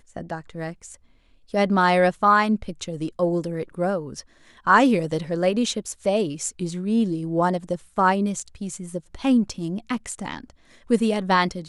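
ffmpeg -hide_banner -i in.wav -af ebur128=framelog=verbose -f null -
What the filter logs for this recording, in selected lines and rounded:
Integrated loudness:
  I:         -22.8 LUFS
  Threshold: -33.6 LUFS
Loudness range:
  LRA:         3.1 LU
  Threshold: -43.4 LUFS
  LRA low:   -25.2 LUFS
  LRA high:  -22.2 LUFS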